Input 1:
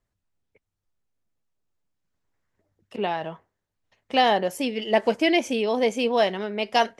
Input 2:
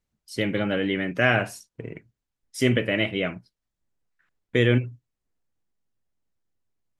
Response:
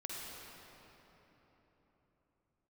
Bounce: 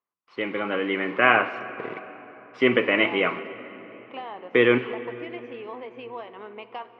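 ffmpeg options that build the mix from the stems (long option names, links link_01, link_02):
-filter_complex "[0:a]acompressor=threshold=-26dB:ratio=10,volume=-6.5dB,asplit=2[link_01][link_02];[link_02]volume=-11.5dB[link_03];[1:a]acrusher=bits=8:dc=4:mix=0:aa=0.000001,dynaudnorm=framelen=570:gausssize=3:maxgain=11.5dB,volume=0dB,asplit=2[link_04][link_05];[link_05]volume=-10dB[link_06];[2:a]atrim=start_sample=2205[link_07];[link_03][link_06]amix=inputs=2:normalize=0[link_08];[link_08][link_07]afir=irnorm=-1:irlink=0[link_09];[link_01][link_04][link_09]amix=inputs=3:normalize=0,highpass=390,equalizer=frequency=610:width_type=q:width=4:gain=-7,equalizer=frequency=1100:width_type=q:width=4:gain=10,equalizer=frequency=1700:width_type=q:width=4:gain=-6,lowpass=frequency=2600:width=0.5412,lowpass=frequency=2600:width=1.3066"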